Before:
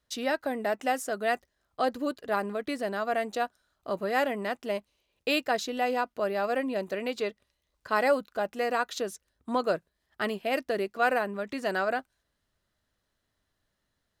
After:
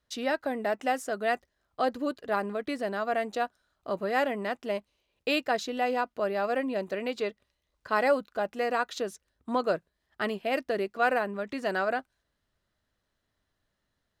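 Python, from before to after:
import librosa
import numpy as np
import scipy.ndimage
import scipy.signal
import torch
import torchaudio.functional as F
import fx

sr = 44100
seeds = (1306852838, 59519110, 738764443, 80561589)

y = fx.high_shelf(x, sr, hz=7100.0, db=-7.0)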